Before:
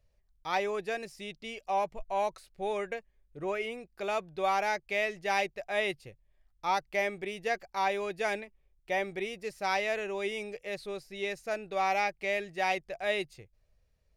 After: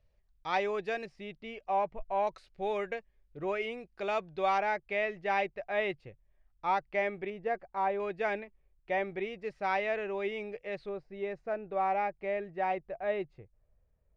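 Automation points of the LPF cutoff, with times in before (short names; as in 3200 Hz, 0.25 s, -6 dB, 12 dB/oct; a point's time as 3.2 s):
4200 Hz
from 1.06 s 2200 Hz
from 2.27 s 4200 Hz
from 4.58 s 2300 Hz
from 7.3 s 1300 Hz
from 8 s 2300 Hz
from 10.89 s 1300 Hz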